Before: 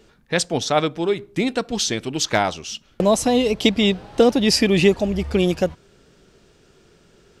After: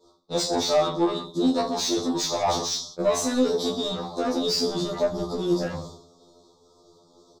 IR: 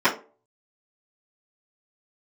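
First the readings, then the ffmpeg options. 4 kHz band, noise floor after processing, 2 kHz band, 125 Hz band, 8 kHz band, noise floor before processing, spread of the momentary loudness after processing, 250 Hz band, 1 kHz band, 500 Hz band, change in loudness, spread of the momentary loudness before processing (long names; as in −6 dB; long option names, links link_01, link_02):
−4.0 dB, −59 dBFS, −13.5 dB, −9.5 dB, −3.0 dB, −56 dBFS, 6 LU, −5.5 dB, −3.0 dB, −5.0 dB, −5.0 dB, 8 LU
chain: -filter_complex "[0:a]agate=range=-33dB:threshold=-42dB:ratio=3:detection=peak,equalizer=frequency=9500:width=5:gain=-11,bandreject=frequency=79.61:width_type=h:width=4,bandreject=frequency=159.22:width_type=h:width=4,bandreject=frequency=238.83:width_type=h:width=4,bandreject=frequency=318.44:width_type=h:width=4,bandreject=frequency=398.05:width_type=h:width=4,bandreject=frequency=477.66:width_type=h:width=4,bandreject=frequency=557.27:width_type=h:width=4,bandreject=frequency=636.88:width_type=h:width=4,acontrast=73,alimiter=limit=-8dB:level=0:latency=1,areverse,acompressor=threshold=-28dB:ratio=6,areverse,asuperstop=centerf=2100:order=20:qfactor=0.93,aecho=1:1:20|46|79.8|123.7|180.9:0.631|0.398|0.251|0.158|0.1,asplit=2[link_01][link_02];[link_02]highpass=frequency=720:poles=1,volume=18dB,asoftclip=type=tanh:threshold=-14.5dB[link_03];[link_01][link_03]amix=inputs=2:normalize=0,lowpass=frequency=3000:poles=1,volume=-6dB,afftfilt=real='re*2*eq(mod(b,4),0)':imag='im*2*eq(mod(b,4),0)':win_size=2048:overlap=0.75,volume=3dB"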